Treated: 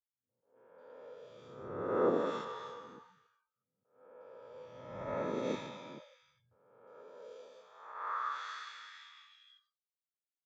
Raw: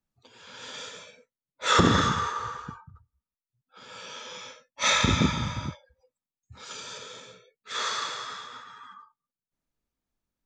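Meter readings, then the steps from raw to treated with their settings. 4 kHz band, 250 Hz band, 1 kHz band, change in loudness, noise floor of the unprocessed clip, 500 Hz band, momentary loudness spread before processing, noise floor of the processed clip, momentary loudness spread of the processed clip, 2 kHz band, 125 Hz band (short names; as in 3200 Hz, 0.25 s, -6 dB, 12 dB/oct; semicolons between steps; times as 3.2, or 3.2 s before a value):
-23.0 dB, -12.0 dB, -11.5 dB, -12.0 dB, under -85 dBFS, -1.5 dB, 22 LU, under -85 dBFS, 22 LU, -17.5 dB, -21.0 dB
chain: spectral swells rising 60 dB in 1.27 s; gate with hold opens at -45 dBFS; bell 70 Hz -12 dB 0.34 oct; band-pass sweep 510 Hz -> 6600 Hz, 7.1–9.58; three bands offset in time lows, mids, highs 0.29/0.65 s, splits 150/2000 Hz; attack slew limiter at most 130 dB/s; gain -4 dB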